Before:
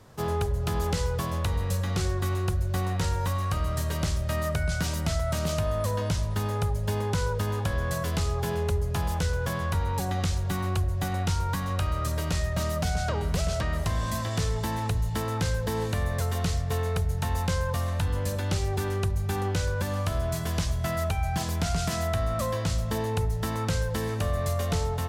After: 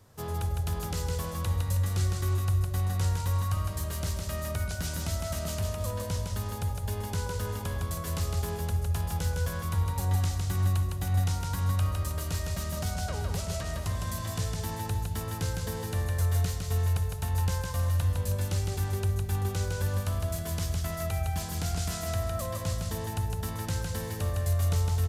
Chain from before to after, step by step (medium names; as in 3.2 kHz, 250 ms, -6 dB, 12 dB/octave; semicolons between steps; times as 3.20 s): peaking EQ 92 Hz +12.5 dB 0.23 oct; resampled via 32 kHz; treble shelf 7.3 kHz +10.5 dB; on a send: feedback delay 158 ms, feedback 36%, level -3.5 dB; on the sum: trim -8 dB